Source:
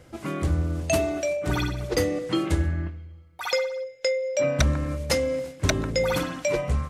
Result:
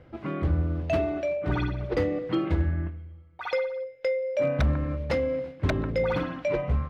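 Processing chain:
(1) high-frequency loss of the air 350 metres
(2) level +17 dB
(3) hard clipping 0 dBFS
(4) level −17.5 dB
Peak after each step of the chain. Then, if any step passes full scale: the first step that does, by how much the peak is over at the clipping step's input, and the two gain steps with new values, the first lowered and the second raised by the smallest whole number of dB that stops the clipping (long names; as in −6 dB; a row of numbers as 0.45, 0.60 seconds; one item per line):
−9.5, +7.5, 0.0, −17.5 dBFS
step 2, 7.5 dB
step 2 +9 dB, step 4 −9.5 dB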